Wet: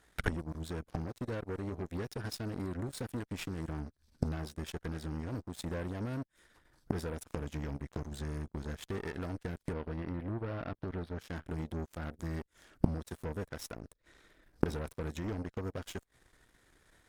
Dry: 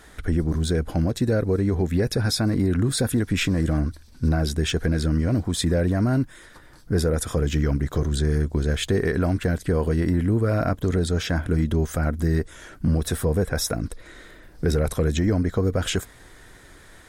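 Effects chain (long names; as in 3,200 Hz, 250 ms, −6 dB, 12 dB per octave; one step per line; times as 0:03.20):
harmonic generator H 5 −28 dB, 6 −27 dB, 7 −15 dB, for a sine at −11 dBFS
0:09.73–0:11.19: moving average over 6 samples
gate with flip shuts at −24 dBFS, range −26 dB
level +9 dB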